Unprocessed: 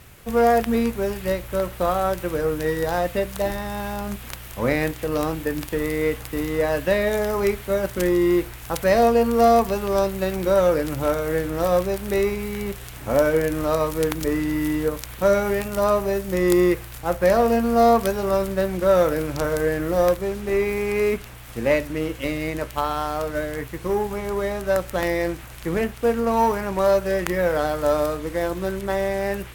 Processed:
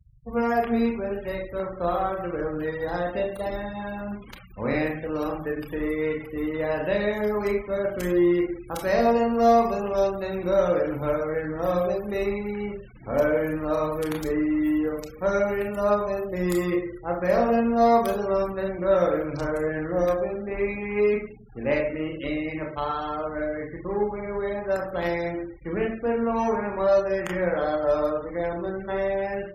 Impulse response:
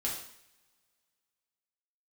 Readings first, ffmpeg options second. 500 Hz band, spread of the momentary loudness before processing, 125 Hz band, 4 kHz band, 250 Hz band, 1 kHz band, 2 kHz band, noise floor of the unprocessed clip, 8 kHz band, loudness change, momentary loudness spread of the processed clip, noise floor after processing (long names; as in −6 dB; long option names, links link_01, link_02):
−3.5 dB, 9 LU, −5.0 dB, −8.0 dB, −2.5 dB, −3.5 dB, −4.0 dB, −39 dBFS, below −10 dB, −3.5 dB, 10 LU, −42 dBFS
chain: -filter_complex "[0:a]asplit=2[link_01][link_02];[1:a]atrim=start_sample=2205,adelay=29[link_03];[link_02][link_03]afir=irnorm=-1:irlink=0,volume=-3.5dB[link_04];[link_01][link_04]amix=inputs=2:normalize=0,afftfilt=real='re*gte(hypot(re,im),0.0282)':imag='im*gte(hypot(re,im),0.0282)':win_size=1024:overlap=0.75,volume=-6.5dB"